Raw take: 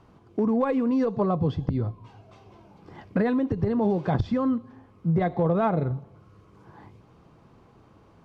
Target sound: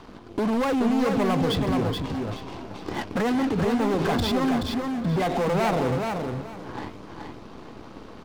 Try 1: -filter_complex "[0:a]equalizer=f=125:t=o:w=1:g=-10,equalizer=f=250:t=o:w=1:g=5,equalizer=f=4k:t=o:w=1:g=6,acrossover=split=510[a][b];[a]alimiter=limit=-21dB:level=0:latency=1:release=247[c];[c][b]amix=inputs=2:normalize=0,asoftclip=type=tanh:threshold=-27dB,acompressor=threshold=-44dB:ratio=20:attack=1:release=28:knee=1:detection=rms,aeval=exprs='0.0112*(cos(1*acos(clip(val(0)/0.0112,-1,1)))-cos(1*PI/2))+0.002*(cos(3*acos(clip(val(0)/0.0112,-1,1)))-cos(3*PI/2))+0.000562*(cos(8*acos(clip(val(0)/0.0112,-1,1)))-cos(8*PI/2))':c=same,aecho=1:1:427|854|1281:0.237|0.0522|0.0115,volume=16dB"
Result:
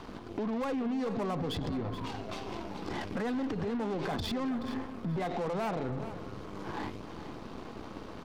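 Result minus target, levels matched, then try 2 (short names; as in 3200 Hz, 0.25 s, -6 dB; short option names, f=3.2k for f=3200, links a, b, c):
compressor: peak gain reduction +6.5 dB; echo-to-direct -8 dB
-filter_complex "[0:a]equalizer=f=125:t=o:w=1:g=-10,equalizer=f=250:t=o:w=1:g=5,equalizer=f=4k:t=o:w=1:g=6,acrossover=split=510[a][b];[a]alimiter=limit=-21dB:level=0:latency=1:release=247[c];[c][b]amix=inputs=2:normalize=0,asoftclip=type=tanh:threshold=-27dB,acompressor=threshold=-37dB:ratio=20:attack=1:release=28:knee=1:detection=rms,aeval=exprs='0.0112*(cos(1*acos(clip(val(0)/0.0112,-1,1)))-cos(1*PI/2))+0.002*(cos(3*acos(clip(val(0)/0.0112,-1,1)))-cos(3*PI/2))+0.000562*(cos(8*acos(clip(val(0)/0.0112,-1,1)))-cos(8*PI/2))':c=same,aecho=1:1:427|854|1281:0.596|0.131|0.0288,volume=16dB"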